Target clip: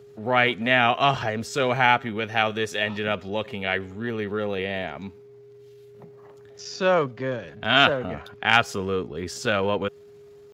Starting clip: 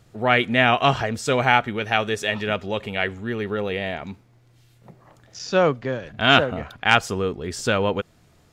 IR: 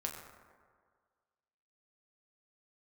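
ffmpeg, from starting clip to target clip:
-filter_complex "[0:a]acrossover=split=480[a][b];[a]asoftclip=type=hard:threshold=-23.5dB[c];[c][b]amix=inputs=2:normalize=0,aeval=exprs='val(0)+0.00631*sin(2*PI*410*n/s)':c=same,atempo=0.81,highpass=84,equalizer=f=8.6k:w=2.7:g=-5.5,volume=-1.5dB"

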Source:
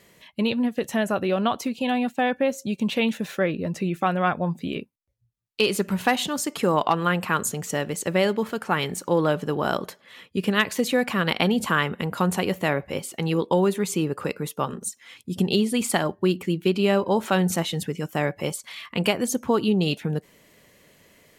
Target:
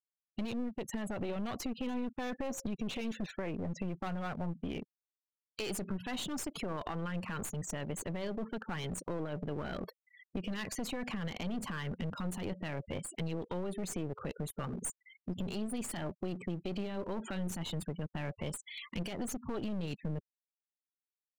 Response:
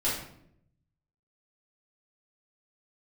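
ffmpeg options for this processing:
-filter_complex "[0:a]asplit=3[a][b][c];[a]afade=t=out:st=1.19:d=0.02[d];[b]acontrast=42,afade=t=in:st=1.19:d=0.02,afade=t=out:st=3.3:d=0.02[e];[c]afade=t=in:st=3.3:d=0.02[f];[d][e][f]amix=inputs=3:normalize=0,afftfilt=real='re*gte(hypot(re,im),0.0251)':imag='im*gte(hypot(re,im),0.0251)':win_size=1024:overlap=0.75,equalizer=f=1k:w=0.42:g=-9,alimiter=limit=-21dB:level=0:latency=1:release=16,aeval=exprs='clip(val(0),-1,0.0158)':c=same,acompressor=threshold=-36dB:ratio=3,adynamicequalizer=threshold=0.00224:dfrequency=2300:dqfactor=0.7:tfrequency=2300:tqfactor=0.7:attack=5:release=100:ratio=0.375:range=2.5:mode=cutabove:tftype=highshelf,volume=1dB"

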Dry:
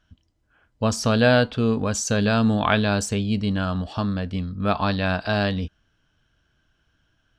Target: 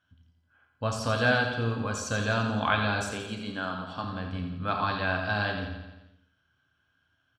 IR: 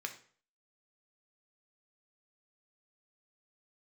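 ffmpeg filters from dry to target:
-filter_complex "[0:a]asettb=1/sr,asplit=3[a][b][c];[a]atrim=end=3.074[d];[b]atrim=start=3.07:end=4.04,asetpts=PTS-STARTPTS,afade=t=in:d=0.004:c=qsin,afade=t=out:st=0.966:d=0.004:c=qsin,highpass=180[e];[c]atrim=start=4.036[f];[d][e]acrossfade=d=0.004:c1=hsin:c2=qsin[g];[g][f]acrossfade=d=0.004:c1=qsin:c2=hsin,aecho=1:1:86|172|258|344|430|516|602:0.376|0.222|0.131|0.0772|0.0455|0.0269|0.0159[h];[1:a]atrim=start_sample=2205,afade=t=out:st=0.17:d=0.01,atrim=end_sample=7938,asetrate=28665,aresample=44100[i];[h][i]afir=irnorm=-1:irlink=0,volume=-8dB"

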